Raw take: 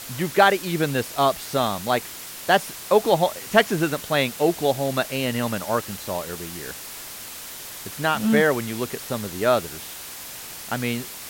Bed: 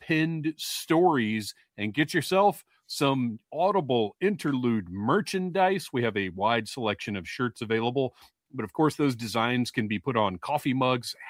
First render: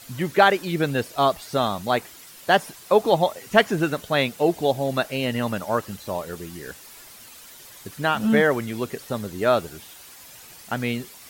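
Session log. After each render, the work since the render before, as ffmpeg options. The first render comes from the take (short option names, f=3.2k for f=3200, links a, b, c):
-af "afftdn=nr=10:nf=-37"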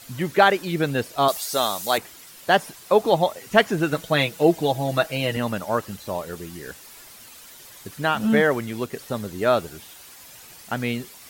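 -filter_complex "[0:a]asettb=1/sr,asplit=3[a][b][c];[a]atrim=end=1.284[d];[b]atrim=start=1.28:end=1.98,asetpts=PTS-STARTPTS,afade=t=in:d=0.004:c=qsin,afade=t=out:st=0.696:d=0.004:c=qsin,bass=f=250:g=-13,treble=f=4k:g=13[e];[c]atrim=start=1.976[f];[d][e]acrossfade=d=0.004:c1=hsin:c2=qsin[g];[g][f]acrossfade=d=0.004:c1=qsin:c2=hsin,asettb=1/sr,asplit=3[h][i][j];[h]atrim=end=3.914[k];[i]atrim=start=3.91:end=5.37,asetpts=PTS-STARTPTS,afade=t=in:d=0.004:c=qsin,afade=t=out:st=1.456:d=0.004:c=qsin,aecho=1:1:6.2:0.69,atrim=end_sample=64386[l];[j]atrim=start=5.366[m];[k][l]acrossfade=d=0.004:c1=hsin:c2=qsin[n];[n][m]acrossfade=d=0.004:c1=qsin:c2=hsin,asettb=1/sr,asplit=3[o][p][q];[o]atrim=end=8.274[r];[p]atrim=start=8.27:end=8.96,asetpts=PTS-STARTPTS,afade=t=in:d=0.004:c=qsin,afade=t=out:st=0.686:d=0.004:c=qsin,aeval=exprs='sgn(val(0))*max(abs(val(0))-0.00282,0)':c=same[s];[q]atrim=start=8.956[t];[r][s]acrossfade=d=0.004:c1=hsin:c2=qsin[u];[u][t]acrossfade=d=0.004:c1=qsin:c2=hsin"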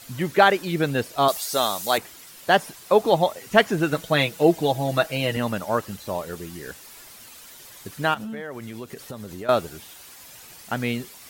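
-filter_complex "[0:a]asettb=1/sr,asplit=3[a][b][c];[a]atrim=end=8.144[d];[b]atrim=start=8.14:end=9.49,asetpts=PTS-STARTPTS,afade=t=in:d=0.004:c=qsin,afade=t=out:st=1.346:d=0.004:c=qsin,acompressor=threshold=-32dB:ratio=5:attack=3.2:release=140:knee=1:detection=peak[e];[c]atrim=start=9.486[f];[d][e]acrossfade=d=0.004:c1=hsin:c2=qsin[g];[g][f]acrossfade=d=0.004:c1=qsin:c2=hsin"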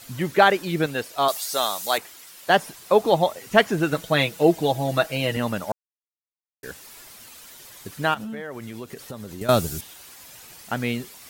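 -filter_complex "[0:a]asettb=1/sr,asplit=3[a][b][c];[a]atrim=end=0.864[d];[b]atrim=start=0.86:end=2.5,asetpts=PTS-STARTPTS,afade=t=in:d=0.004:c=qsin,afade=t=out:st=1.636:d=0.004:c=qsin,lowshelf=f=310:g=-10.5[e];[c]atrim=start=2.496[f];[d][e]acrossfade=d=0.004:c1=hsin:c2=qsin[g];[g][f]acrossfade=d=0.004:c1=qsin:c2=hsin,asettb=1/sr,asplit=3[h][i][j];[h]atrim=end=9.414[k];[i]atrim=start=9.41:end=9.81,asetpts=PTS-STARTPTS,afade=t=in:d=0.004:c=qsin,afade=t=out:st=0.396:d=0.004:c=qsin,bass=f=250:g=12,treble=f=4k:g=12[l];[j]atrim=start=9.806[m];[k][l]acrossfade=d=0.004:c1=hsin:c2=qsin[n];[n][m]acrossfade=d=0.004:c1=qsin:c2=hsin,asplit=3[o][p][q];[o]atrim=end=5.72,asetpts=PTS-STARTPTS,afade=t=out:st=5.716:d=0.004:c=hsin[r];[p]atrim=start=5.72:end=6.63,asetpts=PTS-STARTPTS,volume=0[s];[q]atrim=start=6.63,asetpts=PTS-STARTPTS,afade=t=in:d=0.004:c=hsin[t];[r][s][t]concat=n=3:v=0:a=1"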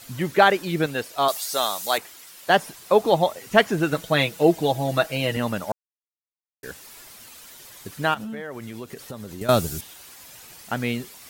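-af anull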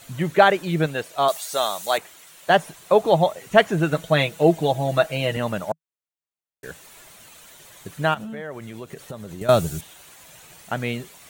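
-af "equalizer=f=160:t=o:w=0.33:g=6,equalizer=f=250:t=o:w=0.33:g=-4,equalizer=f=630:t=o:w=0.33:g=4,equalizer=f=5k:t=o:w=0.33:g=-8,equalizer=f=12.5k:t=o:w=0.33:g=-9"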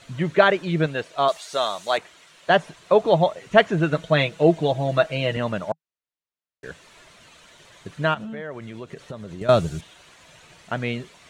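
-af "lowpass=5.2k,bandreject=f=800:w=12"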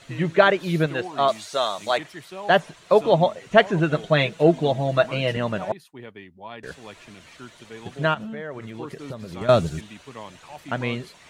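-filter_complex "[1:a]volume=-14dB[a];[0:a][a]amix=inputs=2:normalize=0"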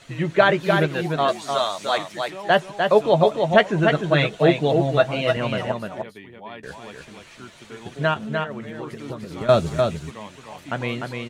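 -filter_complex "[0:a]asplit=2[a][b];[b]adelay=14,volume=-13dB[c];[a][c]amix=inputs=2:normalize=0,aecho=1:1:300:0.596"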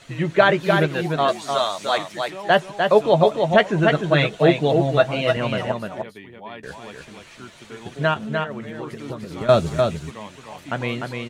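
-af "volume=1dB,alimiter=limit=-2dB:level=0:latency=1"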